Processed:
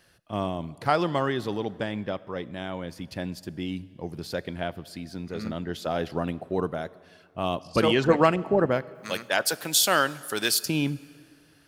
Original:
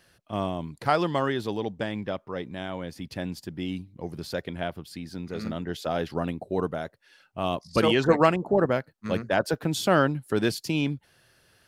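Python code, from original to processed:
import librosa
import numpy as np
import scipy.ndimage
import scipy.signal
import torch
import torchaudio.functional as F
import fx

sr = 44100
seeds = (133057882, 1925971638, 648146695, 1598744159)

y = fx.tilt_eq(x, sr, slope=4.5, at=(8.94, 10.64), fade=0.02)
y = fx.rev_plate(y, sr, seeds[0], rt60_s=2.1, hf_ratio=0.8, predelay_ms=0, drr_db=18.5)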